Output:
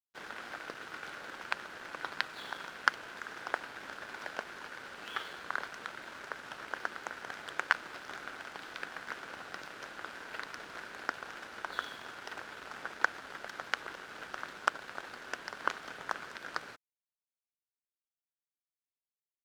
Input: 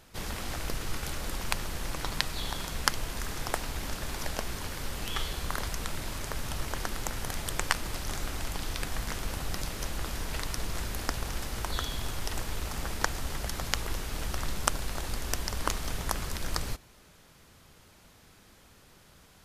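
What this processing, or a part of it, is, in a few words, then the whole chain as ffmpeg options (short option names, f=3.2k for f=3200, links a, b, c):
pocket radio on a weak battery: -af "highpass=330,lowpass=3.4k,aeval=exprs='sgn(val(0))*max(abs(val(0))-0.00335,0)':c=same,equalizer=f=1.5k:t=o:w=0.42:g=10,volume=-3.5dB"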